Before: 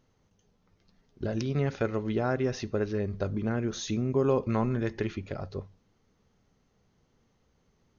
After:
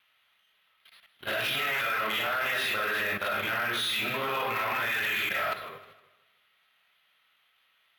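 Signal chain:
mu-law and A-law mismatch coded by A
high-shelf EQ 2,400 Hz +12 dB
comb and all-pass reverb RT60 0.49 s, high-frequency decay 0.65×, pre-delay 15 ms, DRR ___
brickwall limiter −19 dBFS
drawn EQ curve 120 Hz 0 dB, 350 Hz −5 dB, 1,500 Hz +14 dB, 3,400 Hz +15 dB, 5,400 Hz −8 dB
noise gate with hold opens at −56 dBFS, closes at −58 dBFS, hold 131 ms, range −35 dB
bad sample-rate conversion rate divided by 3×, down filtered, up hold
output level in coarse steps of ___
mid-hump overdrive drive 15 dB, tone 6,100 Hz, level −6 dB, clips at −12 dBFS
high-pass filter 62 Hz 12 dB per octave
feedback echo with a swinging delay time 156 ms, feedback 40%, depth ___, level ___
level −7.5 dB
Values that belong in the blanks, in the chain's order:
−8.5 dB, 14 dB, 121 cents, −15 dB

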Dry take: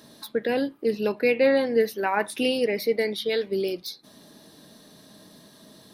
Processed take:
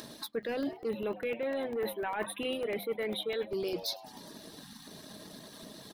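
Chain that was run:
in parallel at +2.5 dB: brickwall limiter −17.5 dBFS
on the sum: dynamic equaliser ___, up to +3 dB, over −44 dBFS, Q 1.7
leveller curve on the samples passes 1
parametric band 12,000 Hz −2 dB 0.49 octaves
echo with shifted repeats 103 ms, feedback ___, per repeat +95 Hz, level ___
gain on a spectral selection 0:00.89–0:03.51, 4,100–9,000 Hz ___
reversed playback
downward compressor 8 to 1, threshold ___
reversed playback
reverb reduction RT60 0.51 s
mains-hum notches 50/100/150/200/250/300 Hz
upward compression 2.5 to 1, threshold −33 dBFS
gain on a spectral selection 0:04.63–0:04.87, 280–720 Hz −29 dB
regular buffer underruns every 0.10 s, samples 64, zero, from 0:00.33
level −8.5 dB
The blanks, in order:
100 Hz, 61%, −17 dB, −24 dB, −22 dBFS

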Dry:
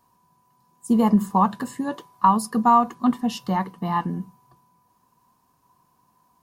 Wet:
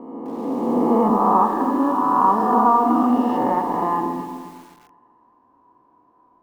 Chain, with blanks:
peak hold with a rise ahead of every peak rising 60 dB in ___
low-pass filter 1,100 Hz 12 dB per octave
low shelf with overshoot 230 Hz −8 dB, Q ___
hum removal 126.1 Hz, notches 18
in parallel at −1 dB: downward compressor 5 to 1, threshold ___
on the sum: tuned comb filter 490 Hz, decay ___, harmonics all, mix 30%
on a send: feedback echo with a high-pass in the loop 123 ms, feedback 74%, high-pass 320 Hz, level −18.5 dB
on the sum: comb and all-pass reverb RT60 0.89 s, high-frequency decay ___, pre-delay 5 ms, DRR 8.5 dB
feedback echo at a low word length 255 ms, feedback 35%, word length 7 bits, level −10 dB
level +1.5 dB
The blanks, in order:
2.02 s, 3, −27 dBFS, 0.16 s, 0.25×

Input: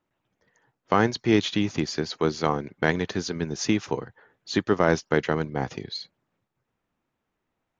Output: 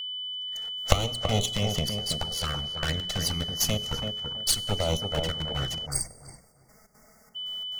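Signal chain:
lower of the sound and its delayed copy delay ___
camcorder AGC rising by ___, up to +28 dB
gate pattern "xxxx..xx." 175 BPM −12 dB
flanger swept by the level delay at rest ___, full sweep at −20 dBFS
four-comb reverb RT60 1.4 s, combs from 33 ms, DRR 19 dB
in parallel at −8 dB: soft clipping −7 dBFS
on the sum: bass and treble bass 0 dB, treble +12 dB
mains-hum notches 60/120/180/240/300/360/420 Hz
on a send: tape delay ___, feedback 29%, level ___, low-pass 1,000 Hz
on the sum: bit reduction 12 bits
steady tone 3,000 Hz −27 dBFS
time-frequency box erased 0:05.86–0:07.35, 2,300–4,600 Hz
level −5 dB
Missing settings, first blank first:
1.5 ms, 31 dB per second, 5.1 ms, 330 ms, −3 dB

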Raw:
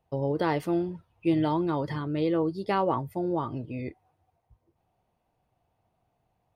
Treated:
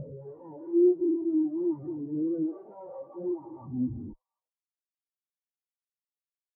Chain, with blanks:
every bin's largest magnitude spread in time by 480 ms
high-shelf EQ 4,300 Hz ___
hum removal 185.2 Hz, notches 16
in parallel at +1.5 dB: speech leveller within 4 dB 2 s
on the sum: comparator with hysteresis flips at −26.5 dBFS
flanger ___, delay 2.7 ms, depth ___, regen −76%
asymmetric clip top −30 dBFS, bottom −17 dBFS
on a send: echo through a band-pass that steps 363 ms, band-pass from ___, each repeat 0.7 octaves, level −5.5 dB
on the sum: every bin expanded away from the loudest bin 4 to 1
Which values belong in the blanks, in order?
+2.5 dB, 1.2 Hz, 5.8 ms, 730 Hz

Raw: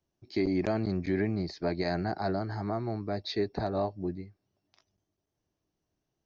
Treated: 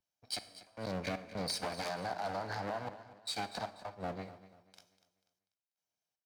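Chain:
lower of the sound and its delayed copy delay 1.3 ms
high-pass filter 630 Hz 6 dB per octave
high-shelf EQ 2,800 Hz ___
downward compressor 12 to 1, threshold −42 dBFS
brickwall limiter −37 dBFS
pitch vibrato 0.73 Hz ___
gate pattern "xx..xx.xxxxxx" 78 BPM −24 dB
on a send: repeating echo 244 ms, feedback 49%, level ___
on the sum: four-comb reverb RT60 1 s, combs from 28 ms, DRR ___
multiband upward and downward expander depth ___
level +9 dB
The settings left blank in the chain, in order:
+2.5 dB, 11 cents, −13 dB, 13.5 dB, 40%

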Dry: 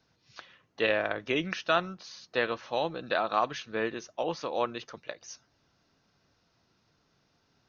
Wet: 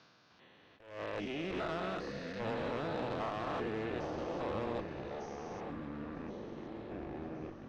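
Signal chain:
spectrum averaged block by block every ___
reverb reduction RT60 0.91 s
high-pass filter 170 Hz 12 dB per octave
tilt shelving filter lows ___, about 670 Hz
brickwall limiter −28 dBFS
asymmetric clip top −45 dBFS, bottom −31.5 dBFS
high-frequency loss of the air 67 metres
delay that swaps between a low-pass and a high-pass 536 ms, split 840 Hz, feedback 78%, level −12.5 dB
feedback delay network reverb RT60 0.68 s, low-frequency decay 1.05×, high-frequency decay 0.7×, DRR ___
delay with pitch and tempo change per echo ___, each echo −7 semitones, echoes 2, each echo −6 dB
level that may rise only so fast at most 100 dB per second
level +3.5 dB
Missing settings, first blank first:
400 ms, +4 dB, 19.5 dB, 306 ms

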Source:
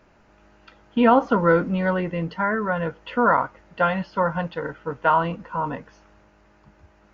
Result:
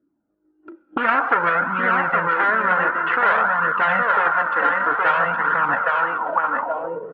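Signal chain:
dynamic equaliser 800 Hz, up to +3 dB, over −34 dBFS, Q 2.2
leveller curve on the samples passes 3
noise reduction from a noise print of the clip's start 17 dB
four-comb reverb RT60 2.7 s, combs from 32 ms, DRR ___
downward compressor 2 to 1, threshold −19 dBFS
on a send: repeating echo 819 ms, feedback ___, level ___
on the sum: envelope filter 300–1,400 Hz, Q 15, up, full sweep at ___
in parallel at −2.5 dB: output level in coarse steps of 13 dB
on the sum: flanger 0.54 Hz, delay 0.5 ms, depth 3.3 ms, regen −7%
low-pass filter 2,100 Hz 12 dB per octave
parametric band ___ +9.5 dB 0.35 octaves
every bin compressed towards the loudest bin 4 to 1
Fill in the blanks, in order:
16 dB, 24%, −5 dB, −20.5 dBFS, 1,400 Hz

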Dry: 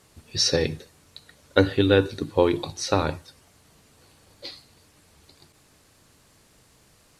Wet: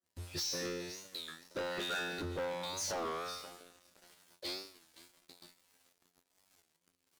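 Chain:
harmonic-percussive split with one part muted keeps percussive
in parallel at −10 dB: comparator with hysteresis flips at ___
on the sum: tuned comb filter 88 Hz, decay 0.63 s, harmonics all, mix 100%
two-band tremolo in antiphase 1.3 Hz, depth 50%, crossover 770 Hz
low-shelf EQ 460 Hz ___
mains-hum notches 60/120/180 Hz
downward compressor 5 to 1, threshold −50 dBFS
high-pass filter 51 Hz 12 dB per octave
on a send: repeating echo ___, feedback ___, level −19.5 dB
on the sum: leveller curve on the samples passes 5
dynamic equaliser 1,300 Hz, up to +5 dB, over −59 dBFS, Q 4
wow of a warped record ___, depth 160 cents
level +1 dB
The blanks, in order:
−22.5 dBFS, −2 dB, 516 ms, 33%, 33 1/3 rpm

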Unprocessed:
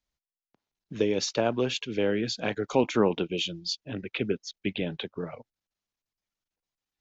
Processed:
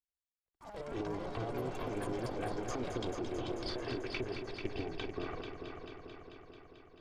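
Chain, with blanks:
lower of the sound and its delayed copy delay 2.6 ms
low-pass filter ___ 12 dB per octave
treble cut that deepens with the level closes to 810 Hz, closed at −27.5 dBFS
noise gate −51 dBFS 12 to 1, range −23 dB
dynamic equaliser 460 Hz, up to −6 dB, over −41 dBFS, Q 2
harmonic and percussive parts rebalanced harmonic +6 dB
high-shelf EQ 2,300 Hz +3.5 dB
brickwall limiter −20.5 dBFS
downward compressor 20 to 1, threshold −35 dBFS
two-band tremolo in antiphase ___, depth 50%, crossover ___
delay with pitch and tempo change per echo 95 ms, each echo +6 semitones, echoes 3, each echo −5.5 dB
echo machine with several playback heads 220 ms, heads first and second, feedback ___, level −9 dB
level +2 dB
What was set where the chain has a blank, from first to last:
5,200 Hz, 7.1 Hz, 560 Hz, 67%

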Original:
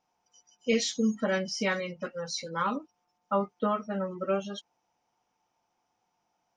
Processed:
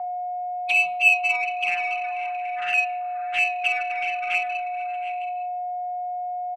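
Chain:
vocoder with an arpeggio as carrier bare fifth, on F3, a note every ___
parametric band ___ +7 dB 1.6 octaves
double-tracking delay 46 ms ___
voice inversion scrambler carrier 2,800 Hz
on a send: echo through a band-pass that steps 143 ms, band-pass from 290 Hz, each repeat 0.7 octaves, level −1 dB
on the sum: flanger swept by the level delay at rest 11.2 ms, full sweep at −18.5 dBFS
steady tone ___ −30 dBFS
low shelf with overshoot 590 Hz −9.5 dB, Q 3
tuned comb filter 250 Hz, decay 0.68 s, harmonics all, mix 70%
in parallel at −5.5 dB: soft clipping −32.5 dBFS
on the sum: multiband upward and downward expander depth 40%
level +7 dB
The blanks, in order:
118 ms, 230 Hz, −4 dB, 720 Hz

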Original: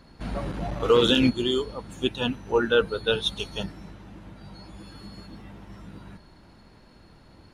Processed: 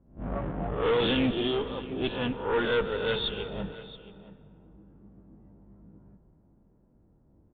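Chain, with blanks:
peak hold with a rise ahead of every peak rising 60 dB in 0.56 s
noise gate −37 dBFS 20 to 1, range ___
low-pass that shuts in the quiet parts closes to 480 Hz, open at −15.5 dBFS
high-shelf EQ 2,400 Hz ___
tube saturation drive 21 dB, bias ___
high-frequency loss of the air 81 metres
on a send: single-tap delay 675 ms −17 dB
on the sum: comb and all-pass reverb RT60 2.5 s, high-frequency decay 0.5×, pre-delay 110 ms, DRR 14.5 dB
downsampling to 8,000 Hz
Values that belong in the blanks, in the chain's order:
−8 dB, +2.5 dB, 0.6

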